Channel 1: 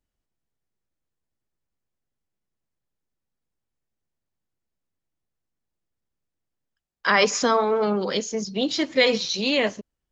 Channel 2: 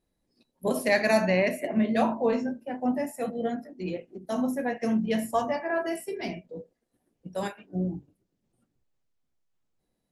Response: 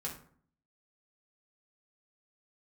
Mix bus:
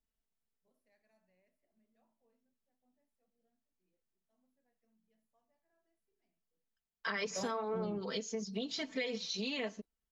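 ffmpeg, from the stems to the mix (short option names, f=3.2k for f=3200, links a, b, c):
-filter_complex "[0:a]aecho=1:1:4.5:0.85,volume=-11dB,asplit=2[a][b];[1:a]volume=-3dB[c];[b]apad=whole_len=446125[d];[c][d]sidechaingate=range=-50dB:threshold=-44dB:ratio=16:detection=peak[e];[a][e]amix=inputs=2:normalize=0,acompressor=threshold=-35dB:ratio=5"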